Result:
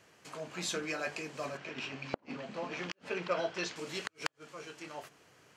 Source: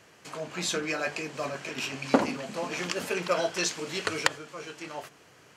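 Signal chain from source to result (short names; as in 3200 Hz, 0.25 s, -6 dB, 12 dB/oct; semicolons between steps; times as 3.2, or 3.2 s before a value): 1.57–3.76 LPF 4000 Hz 12 dB/oct; flipped gate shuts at -13 dBFS, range -40 dB; gain -6 dB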